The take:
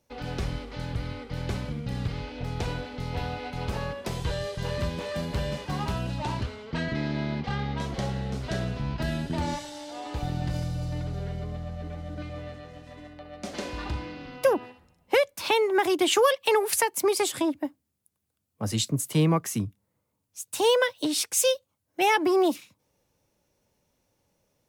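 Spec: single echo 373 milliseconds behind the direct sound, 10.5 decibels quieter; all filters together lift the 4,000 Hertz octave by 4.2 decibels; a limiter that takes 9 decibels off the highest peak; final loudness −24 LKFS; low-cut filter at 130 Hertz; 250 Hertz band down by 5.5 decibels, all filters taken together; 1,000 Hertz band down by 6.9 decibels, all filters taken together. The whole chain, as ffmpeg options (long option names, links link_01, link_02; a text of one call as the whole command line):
ffmpeg -i in.wav -af "highpass=130,equalizer=frequency=250:width_type=o:gain=-7.5,equalizer=frequency=1000:width_type=o:gain=-8.5,equalizer=frequency=4000:width_type=o:gain=6,alimiter=limit=-18dB:level=0:latency=1,aecho=1:1:373:0.299,volume=7.5dB" out.wav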